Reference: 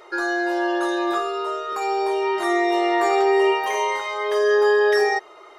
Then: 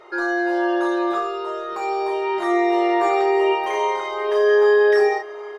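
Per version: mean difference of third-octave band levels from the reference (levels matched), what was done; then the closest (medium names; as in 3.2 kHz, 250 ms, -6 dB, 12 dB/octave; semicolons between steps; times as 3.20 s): 3.0 dB: low-pass 2.9 kHz 6 dB/octave; peaking EQ 140 Hz +7.5 dB 0.21 oct; doubling 34 ms -6.5 dB; feedback delay 775 ms, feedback 45%, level -19.5 dB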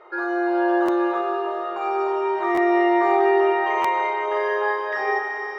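6.0 dB: low-pass 1.7 kHz 12 dB/octave; bass shelf 300 Hz -9 dB; Schroeder reverb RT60 3.4 s, combs from 31 ms, DRR -0.5 dB; buffer glitch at 0.85/2.54/3.81 s, samples 512, times 2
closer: first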